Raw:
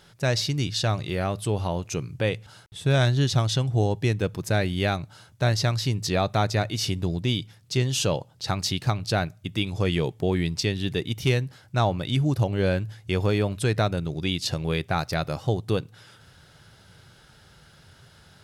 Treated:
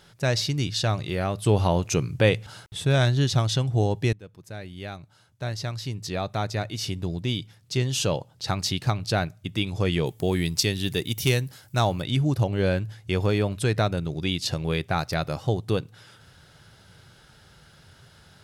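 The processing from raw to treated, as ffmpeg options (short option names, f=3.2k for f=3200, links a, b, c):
-filter_complex "[0:a]asettb=1/sr,asplit=3[a][b][c];[a]atrim=end=10.064[d];[b]atrim=start=10.06:end=12.02,asetpts=PTS-STARTPTS,afade=t=in:d=0.004:c=qsin,afade=t=out:st=1.956:d=0.004:c=qsin,aemphasis=mode=production:type=50fm[e];[c]atrim=start=12.016[f];[d][e]acrossfade=d=0.004:c1=hsin:c2=qsin[g];[g][f]acrossfade=d=0.004:c1=qsin:c2=hsin,asplit=4[h][i][j][k];[h]atrim=end=1.462[l];[i]atrim=start=1.458:end=2.852,asetpts=PTS-STARTPTS,volume=5.5dB[m];[j]atrim=start=2.848:end=4.13,asetpts=PTS-STARTPTS,afade=t=out:st=1.278:d=0.004:c=hsin:silence=0.0944061[n];[k]atrim=start=4.13,asetpts=PTS-STARTPTS,afade=t=in:d=4.22:silence=0.0944061[o];[l][m]acrossfade=d=0.004:c1=hsin:c2=hsin[p];[n][o]concat=n=2:v=0:a=1[q];[p][q]acrossfade=d=0.004:c1=hsin:c2=hsin"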